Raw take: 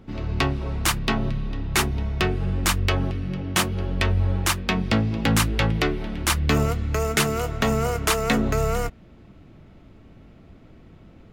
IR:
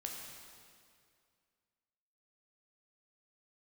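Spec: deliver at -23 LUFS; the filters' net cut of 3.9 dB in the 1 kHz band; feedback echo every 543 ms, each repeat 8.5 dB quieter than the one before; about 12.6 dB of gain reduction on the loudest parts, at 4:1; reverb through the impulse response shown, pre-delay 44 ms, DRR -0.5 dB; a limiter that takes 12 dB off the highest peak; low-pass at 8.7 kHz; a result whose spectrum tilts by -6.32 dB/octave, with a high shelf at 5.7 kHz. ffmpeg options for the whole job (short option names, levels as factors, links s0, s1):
-filter_complex "[0:a]lowpass=8700,equalizer=f=1000:t=o:g=-5,highshelf=f=5700:g=-7.5,acompressor=threshold=0.0224:ratio=4,alimiter=level_in=2:limit=0.0631:level=0:latency=1,volume=0.501,aecho=1:1:543|1086|1629|2172:0.376|0.143|0.0543|0.0206,asplit=2[s0][s1];[1:a]atrim=start_sample=2205,adelay=44[s2];[s1][s2]afir=irnorm=-1:irlink=0,volume=1.19[s3];[s0][s3]amix=inputs=2:normalize=0,volume=3.35"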